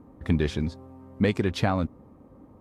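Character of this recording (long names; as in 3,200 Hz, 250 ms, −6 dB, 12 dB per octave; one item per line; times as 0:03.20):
background noise floor −53 dBFS
spectral slope −6.0 dB per octave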